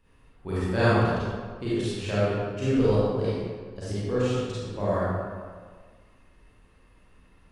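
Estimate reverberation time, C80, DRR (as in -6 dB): 1.7 s, -2.0 dB, -10.5 dB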